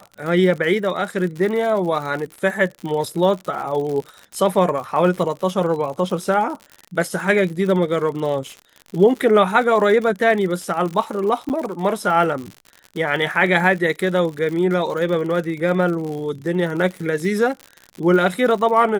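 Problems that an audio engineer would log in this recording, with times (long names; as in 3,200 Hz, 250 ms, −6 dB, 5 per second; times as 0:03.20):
surface crackle 76 per second −27 dBFS
0:11.49–0:11.50: drop-out 9.1 ms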